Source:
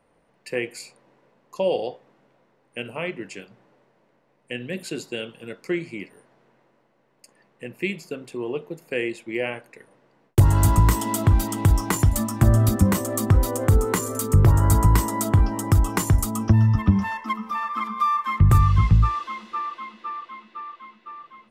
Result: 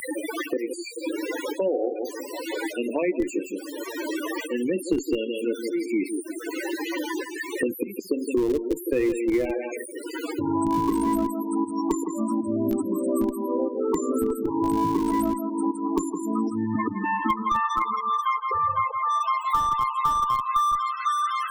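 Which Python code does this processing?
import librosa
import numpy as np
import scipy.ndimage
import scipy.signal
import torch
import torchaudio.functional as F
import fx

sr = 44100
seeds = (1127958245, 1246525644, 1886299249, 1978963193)

p1 = x + 0.5 * 10.0 ** (-21.0 / 20.0) * np.diff(np.sign(x), prepend=np.sign(x[:1]))
p2 = fx.auto_swell(p1, sr, attack_ms=557.0)
p3 = fx.echo_feedback(p2, sr, ms=163, feedback_pct=24, wet_db=-7.5)
p4 = fx.filter_sweep_highpass(p3, sr, from_hz=300.0, to_hz=1400.0, start_s=17.27, end_s=21.15, q=4.3)
p5 = fx.dynamic_eq(p4, sr, hz=1000.0, q=2.5, threshold_db=-42.0, ratio=4.0, max_db=4)
p6 = fx.spec_topn(p5, sr, count=16)
p7 = fx.schmitt(p6, sr, flips_db=-17.0)
p8 = p6 + (p7 * librosa.db_to_amplitude(-8.5))
y = fx.band_squash(p8, sr, depth_pct=100)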